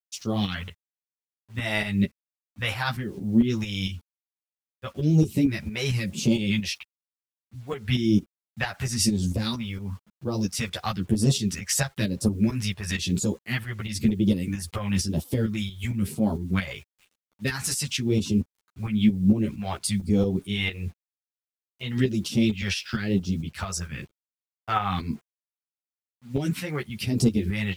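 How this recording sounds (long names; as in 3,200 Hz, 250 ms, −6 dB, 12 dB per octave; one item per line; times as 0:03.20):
phaser sweep stages 2, 1 Hz, lowest notch 240–1,900 Hz
a quantiser's noise floor 10 bits, dither none
tremolo saw up 4.4 Hz, depth 65%
a shimmering, thickened sound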